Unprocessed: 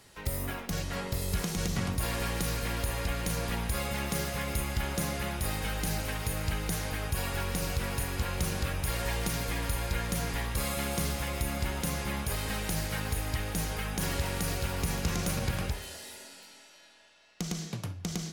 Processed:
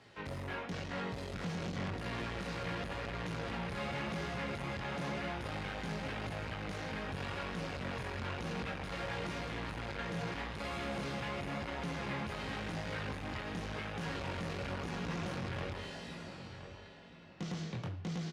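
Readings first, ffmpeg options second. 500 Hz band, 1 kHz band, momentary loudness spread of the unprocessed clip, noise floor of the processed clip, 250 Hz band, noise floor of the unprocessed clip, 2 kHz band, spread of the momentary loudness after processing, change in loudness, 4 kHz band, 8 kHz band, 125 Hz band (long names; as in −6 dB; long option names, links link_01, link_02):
−4.0 dB, −3.5 dB, 5 LU, −49 dBFS, −4.5 dB, −55 dBFS, −4.5 dB, 3 LU, −7.0 dB, −7.5 dB, −19.5 dB, −8.0 dB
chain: -filter_complex "[0:a]flanger=delay=17:depth=6.9:speed=0.93,asoftclip=type=hard:threshold=-37.5dB,highpass=100,lowpass=3400,asplit=2[link_01][link_02];[link_02]adelay=1021,lowpass=frequency=1500:poles=1,volume=-9.5dB,asplit=2[link_03][link_04];[link_04]adelay=1021,lowpass=frequency=1500:poles=1,volume=0.32,asplit=2[link_05][link_06];[link_06]adelay=1021,lowpass=frequency=1500:poles=1,volume=0.32,asplit=2[link_07][link_08];[link_08]adelay=1021,lowpass=frequency=1500:poles=1,volume=0.32[link_09];[link_03][link_05][link_07][link_09]amix=inputs=4:normalize=0[link_10];[link_01][link_10]amix=inputs=2:normalize=0,volume=3dB"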